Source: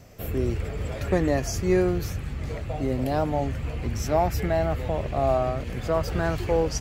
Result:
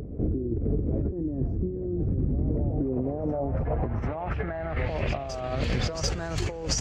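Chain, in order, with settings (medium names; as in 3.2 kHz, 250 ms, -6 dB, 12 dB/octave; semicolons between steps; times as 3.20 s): compressor with a negative ratio -32 dBFS, ratio -1; low-pass sweep 310 Hz -> 6.9 kHz, 2.71–6.15 s; on a send: reverse echo 741 ms -12 dB; on the sum: trim +2 dB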